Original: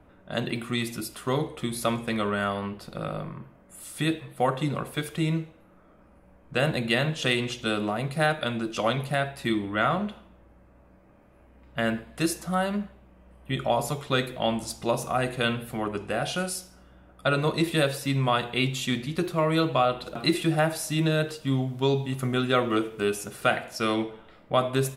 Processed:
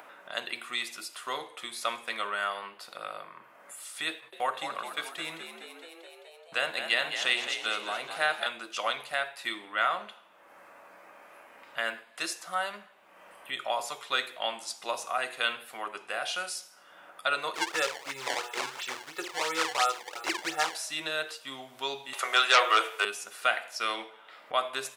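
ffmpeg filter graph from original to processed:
ffmpeg -i in.wav -filter_complex "[0:a]asettb=1/sr,asplit=3[link_01][link_02][link_03];[link_01]atrim=end=4.114[link_04];[link_02]atrim=start=4.11:end=8.47,asetpts=PTS-STARTPTS,afade=type=in:duration=0.004:curve=qsin,afade=type=out:start_time=4.356:duration=0.004:curve=qsin,agate=range=-19dB:threshold=-44dB:ratio=16:release=100:detection=peak,asplit=7[link_05][link_06][link_07][link_08][link_09][link_10][link_11];[link_06]adelay=213,afreqshift=58,volume=-8.5dB[link_12];[link_07]adelay=426,afreqshift=116,volume=-14.3dB[link_13];[link_08]adelay=639,afreqshift=174,volume=-20.2dB[link_14];[link_09]adelay=852,afreqshift=232,volume=-26dB[link_15];[link_10]adelay=1065,afreqshift=290,volume=-31.9dB[link_16];[link_11]adelay=1278,afreqshift=348,volume=-37.7dB[link_17];[link_05][link_12][link_13][link_14][link_15][link_16][link_17]amix=inputs=7:normalize=0,atrim=end_sample=192276[link_18];[link_03]atrim=start=8.466[link_19];[link_04][link_18]acrossfade=duration=0.004:curve1=hsin:curve2=qsin[link_20];[link_20][link_19]acrossfade=duration=0.004:curve1=qsin:curve2=hsin,asettb=1/sr,asplit=3[link_21][link_22][link_23];[link_21]atrim=end=17.554[link_24];[link_22]atrim=start=17.55:end=20.75,asetpts=PTS-STARTPTS,afade=type=in:duration=0.004:curve=qsin,afade=type=out:start_time=3.196:duration=0.004:curve=qsin,highshelf=frequency=3700:gain=-10.5,aecho=1:1:2.3:0.93,atrim=end_sample=141120,acrusher=samples=20:mix=1:aa=0.000001:lfo=1:lforange=32:lforate=2.9[link_25];[link_23]atrim=start=20.746[link_26];[link_24][link_25]acrossfade=duration=0.004:curve1=hsin:curve2=qsin[link_27];[link_27][link_26]acrossfade=duration=0.004:curve1=qsin:curve2=hsin,asettb=1/sr,asplit=3[link_28][link_29][link_30];[link_28]atrim=end=22.134[link_31];[link_29]atrim=start=22.13:end=23.05,asetpts=PTS-STARTPTS,afade=type=in:duration=0.004:curve=qsin,afade=type=out:start_time=0.916:duration=0.004:curve=qsin,highpass=frequency=450:width=0.5412,highpass=frequency=450:width=1.3066,aeval=exprs='0.266*sin(PI/2*2.24*val(0)/0.266)':channel_layout=same[link_32];[link_30]atrim=start=23.046[link_33];[link_31][link_32]acrossfade=duration=0.004:curve1=hsin:curve2=qsin[link_34];[link_34][link_33]acrossfade=duration=0.004:curve1=qsin:curve2=hsin,acrossover=split=9200[link_35][link_36];[link_36]acompressor=threshold=-55dB:ratio=4:attack=1:release=60[link_37];[link_35][link_37]amix=inputs=2:normalize=0,highpass=930,acompressor=mode=upward:threshold=-39dB:ratio=2.5" out.wav

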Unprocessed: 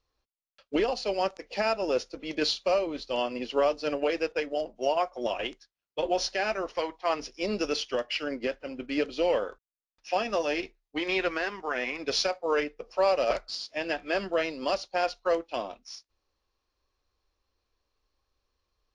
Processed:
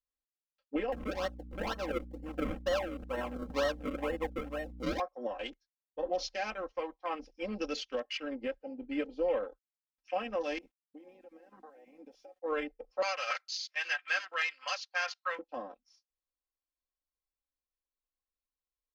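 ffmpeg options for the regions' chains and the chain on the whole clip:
ffmpeg -i in.wav -filter_complex "[0:a]asettb=1/sr,asplit=3[link_01][link_02][link_03];[link_01]atrim=end=0.924[link_04];[link_02]atrim=start=0.92:end=5,asetpts=PTS-STARTPTS,afade=type=in:duration=0.004:curve=qsin,afade=type=out:start_time=4.076:duration=0.004:curve=qsin,bandreject=frequency=740:width=19,acrusher=samples=35:mix=1:aa=0.000001:lfo=1:lforange=35:lforate=2.1,aeval=exprs='val(0)+0.0112*(sin(2*PI*60*n/s)+sin(2*PI*2*60*n/s)/2+sin(2*PI*3*60*n/s)/3+sin(2*PI*4*60*n/s)/4+sin(2*PI*5*60*n/s)/5)':channel_layout=same[link_05];[link_03]atrim=start=4.996[link_06];[link_04][link_05]acrossfade=duration=0.004:curve1=hsin:curve2=qsin[link_07];[link_07][link_06]acrossfade=duration=0.004:curve1=qsin:curve2=hsin,asettb=1/sr,asplit=3[link_08][link_09][link_10];[link_08]atrim=end=10.584[link_11];[link_09]atrim=start=10.58:end=12.42,asetpts=PTS-STARTPTS,afade=type=in:duration=0.004:curve=qsin,afade=type=out:start_time=1.836:duration=0.004:curve=qsin,equalizer=frequency=4200:width_type=o:width=0.35:gain=-14.5,acompressor=threshold=-40dB:ratio=16:attack=3.2:release=140:knee=1:detection=peak,aeval=exprs='val(0)*gte(abs(val(0)),0.00168)':channel_layout=same[link_12];[link_10]atrim=start=12.416[link_13];[link_11][link_12]acrossfade=duration=0.004:curve1=hsin:curve2=qsin[link_14];[link_14][link_13]acrossfade=duration=0.004:curve1=qsin:curve2=hsin,asettb=1/sr,asplit=3[link_15][link_16][link_17];[link_15]atrim=end=13.024[link_18];[link_16]atrim=start=13.02:end=15.39,asetpts=PTS-STARTPTS,afade=type=in:duration=0.004:curve=qsin,afade=type=out:start_time=2.366:duration=0.004:curve=qsin,acontrast=28,highpass=frequency=1500:width_type=q:width=1.7,aeval=exprs='0.224*(abs(mod(val(0)/0.224+3,4)-2)-1)':channel_layout=same[link_19];[link_17]atrim=start=15.386[link_20];[link_18][link_19]acrossfade=duration=0.004:curve1=hsin:curve2=qsin[link_21];[link_21][link_20]acrossfade=duration=0.004:curve1=qsin:curve2=hsin,afwtdn=0.0112,aecho=1:1:3.8:0.82,volume=-9dB" out.wav

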